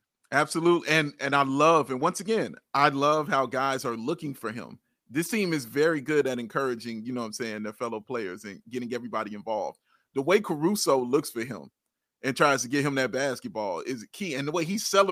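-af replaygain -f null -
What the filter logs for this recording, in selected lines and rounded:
track_gain = +5.4 dB
track_peak = 0.350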